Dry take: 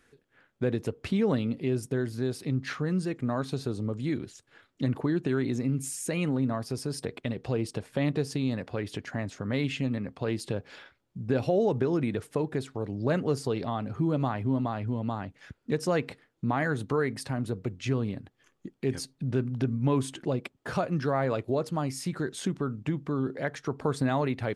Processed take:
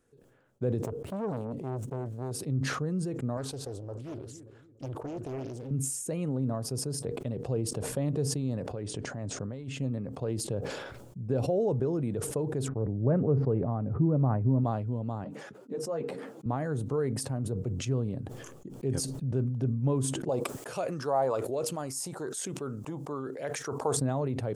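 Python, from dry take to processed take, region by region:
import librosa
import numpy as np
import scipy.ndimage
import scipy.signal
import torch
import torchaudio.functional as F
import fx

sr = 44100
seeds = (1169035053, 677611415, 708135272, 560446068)

y = fx.chain(x, sr, fx.median_filter(points=9),
    fx.transformer_sat(knee_hz=870.0), at=(0.83, 2.31))
y = fx.chain(y, sr, fx.peak_eq(hz=180.0, db=-14.5, octaves=1.3),
    fx.echo_filtered(ms=288, feedback_pct=53, hz=980.0, wet_db=-15.0),
    fx.doppler_dist(depth_ms=0.84), at=(3.37, 5.71))
y = fx.chain(y, sr, fx.ellip_lowpass(hz=9200.0, order=4, stop_db=40),
    fx.over_compress(threshold_db=-34.0, ratio=-1.0), at=(8.72, 9.73))
y = fx.chain(y, sr, fx.lowpass(hz=2000.0, slope=24),
    fx.low_shelf(hz=270.0, db=7.0), at=(12.68, 14.64))
y = fx.chain(y, sr, fx.highpass(hz=180.0, slope=24),
    fx.high_shelf(hz=2800.0, db=-8.0),
    fx.ensemble(), at=(15.24, 16.46))
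y = fx.chain(y, sr, fx.bass_treble(bass_db=-12, treble_db=10),
    fx.bell_lfo(hz=1.1, low_hz=790.0, high_hz=2600.0, db=12), at=(20.29, 23.97))
y = fx.graphic_eq(y, sr, hz=(125, 500, 2000, 4000, 8000), db=(7, 6, -9, -6, 4))
y = fx.sustainer(y, sr, db_per_s=37.0)
y = y * librosa.db_to_amplitude(-7.5)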